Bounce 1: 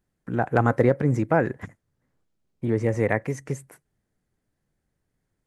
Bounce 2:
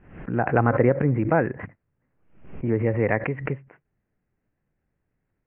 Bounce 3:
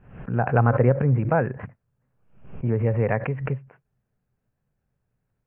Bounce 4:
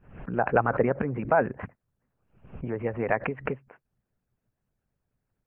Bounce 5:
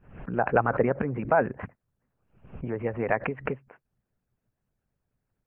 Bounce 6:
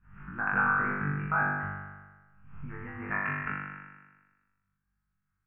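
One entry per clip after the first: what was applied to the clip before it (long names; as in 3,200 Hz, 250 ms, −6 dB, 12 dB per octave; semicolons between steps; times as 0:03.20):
Butterworth low-pass 2,800 Hz 72 dB per octave; background raised ahead of every attack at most 90 dB per second
thirty-one-band graphic EQ 125 Hz +6 dB, 315 Hz −10 dB, 2,000 Hz −8 dB
harmonic and percussive parts rebalanced harmonic −17 dB; level +2 dB
no processing that can be heard
drawn EQ curve 170 Hz 0 dB, 570 Hz −23 dB, 840 Hz −7 dB, 1,300 Hz +7 dB, 3,000 Hz −6 dB; on a send: flutter between parallel walls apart 3.5 metres, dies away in 1.3 s; on the sum: level −7 dB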